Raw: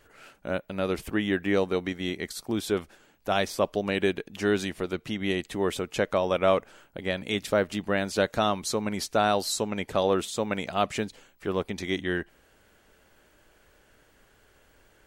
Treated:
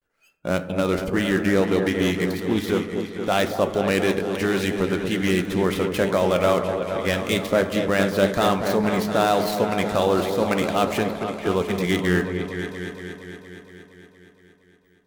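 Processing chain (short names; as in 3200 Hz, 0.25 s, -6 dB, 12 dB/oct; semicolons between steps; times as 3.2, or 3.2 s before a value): switching dead time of 0.07 ms; gate with hold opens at -50 dBFS; flange 0.35 Hz, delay 3.7 ms, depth 6 ms, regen +81%; in parallel at -1.5 dB: negative-ratio compressor -32 dBFS; on the sum: spectral noise reduction 26 dB; repeats that get brighter 0.233 s, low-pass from 750 Hz, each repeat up 2 oct, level -6 dB; on a send at -10.5 dB: reverb RT60 1.4 s, pre-delay 3 ms; on the sum: Doppler distortion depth 0.11 ms; gain +5 dB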